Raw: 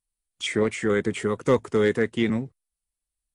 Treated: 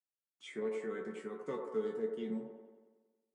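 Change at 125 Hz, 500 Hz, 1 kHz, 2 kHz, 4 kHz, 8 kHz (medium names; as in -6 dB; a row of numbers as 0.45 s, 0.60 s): -24.5 dB, -14.0 dB, -16.0 dB, -21.0 dB, -22.5 dB, under -20 dB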